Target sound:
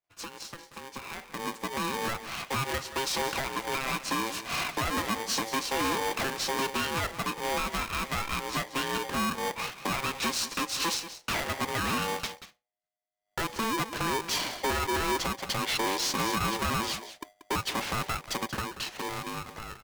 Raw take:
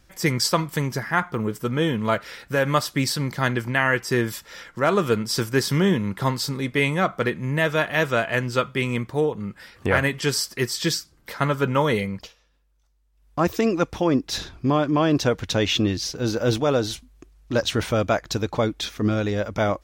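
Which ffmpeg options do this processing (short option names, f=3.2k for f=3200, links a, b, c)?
-filter_complex "[0:a]agate=range=-33dB:threshold=-41dB:ratio=3:detection=peak,lowpass=8.9k,bass=f=250:g=-10,treble=f=4k:g=-7,bandreject=f=60:t=h:w=6,bandreject=f=120:t=h:w=6,bandreject=f=180:t=h:w=6,acompressor=threshold=-35dB:ratio=4,alimiter=level_in=3dB:limit=-24dB:level=0:latency=1:release=345,volume=-3dB,dynaudnorm=f=540:g=7:m=14dB,asoftclip=type=hard:threshold=-23.5dB,asplit=2[a][b];[b]aecho=0:1:184:0.224[c];[a][c]amix=inputs=2:normalize=0,aeval=exprs='val(0)*sgn(sin(2*PI*670*n/s))':c=same,volume=-2dB"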